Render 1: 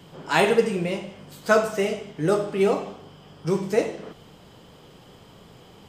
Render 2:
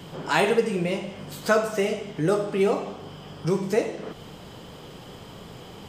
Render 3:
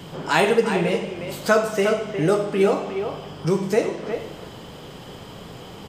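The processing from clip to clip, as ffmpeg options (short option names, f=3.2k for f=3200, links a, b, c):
-af "acompressor=threshold=-39dB:ratio=1.5,volume=6.5dB"
-filter_complex "[0:a]asplit=2[a][b];[b]adelay=360,highpass=300,lowpass=3.4k,asoftclip=type=hard:threshold=-13dB,volume=-7dB[c];[a][c]amix=inputs=2:normalize=0,volume=3dB"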